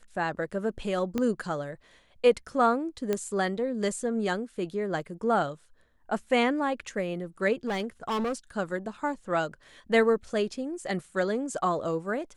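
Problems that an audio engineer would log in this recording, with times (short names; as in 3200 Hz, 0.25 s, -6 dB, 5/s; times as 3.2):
1.18 pop -16 dBFS
3.13 pop -14 dBFS
7.67–8.33 clipped -26 dBFS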